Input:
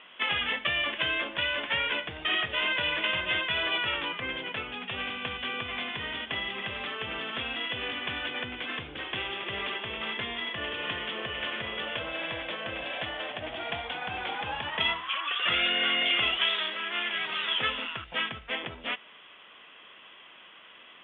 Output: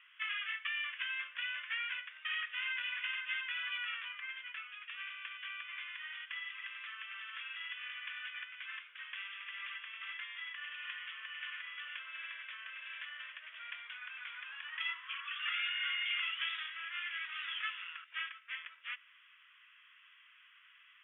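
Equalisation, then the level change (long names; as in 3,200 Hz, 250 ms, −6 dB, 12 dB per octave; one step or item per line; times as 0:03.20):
high-pass filter 1,100 Hz 24 dB per octave
phaser with its sweep stopped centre 1,900 Hz, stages 4
−7.5 dB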